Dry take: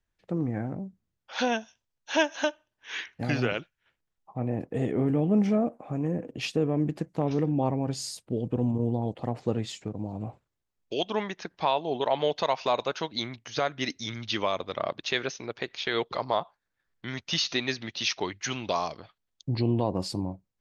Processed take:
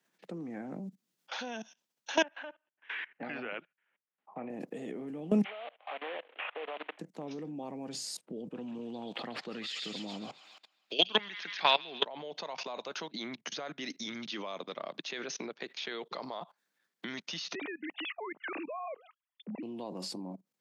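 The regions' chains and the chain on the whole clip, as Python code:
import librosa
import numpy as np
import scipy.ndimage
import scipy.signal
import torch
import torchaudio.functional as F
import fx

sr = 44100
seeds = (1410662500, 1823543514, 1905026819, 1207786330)

y = fx.chain(x, sr, fx.lowpass(hz=2500.0, slope=24),
    fx.low_shelf(hz=460.0, db=-11.0), at=(2.23, 4.5))
y = fx.chain(y, sr, fx.cvsd(bps=16000),
    fx.highpass(hz=640.0, slope=24),
    fx.band_squash(depth_pct=70), at=(5.44, 6.99))
y = fx.chain(y, sr, fx.band_shelf(hz=2500.0, db=12.5, octaves=2.3),
    fx.echo_wet_highpass(ms=136, feedback_pct=48, hz=1900.0, wet_db=-3.5), at=(8.54, 12.05))
y = fx.chain(y, sr, fx.sine_speech(),
    fx.high_shelf(hz=2400.0, db=-9.5), at=(17.55, 19.63))
y = fx.level_steps(y, sr, step_db=22)
y = scipy.signal.sosfilt(scipy.signal.butter(6, 170.0, 'highpass', fs=sr, output='sos'), y)
y = fx.band_squash(y, sr, depth_pct=40)
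y = y * librosa.db_to_amplitude(4.5)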